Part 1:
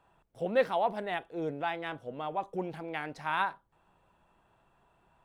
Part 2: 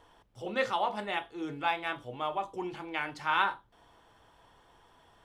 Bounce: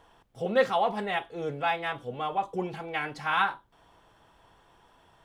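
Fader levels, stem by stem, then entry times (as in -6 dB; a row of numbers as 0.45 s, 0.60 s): +1.5 dB, 0.0 dB; 0.00 s, 0.00 s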